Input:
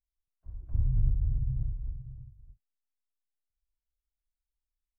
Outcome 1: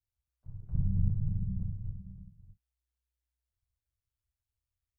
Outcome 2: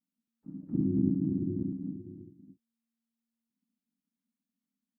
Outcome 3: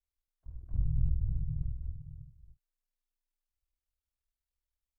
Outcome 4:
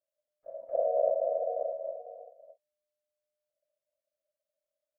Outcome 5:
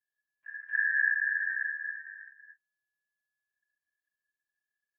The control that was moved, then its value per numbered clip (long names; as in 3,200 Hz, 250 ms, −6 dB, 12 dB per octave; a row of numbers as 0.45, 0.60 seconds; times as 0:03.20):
ring modulation, frequency: 62, 230, 20, 600, 1,700 Hertz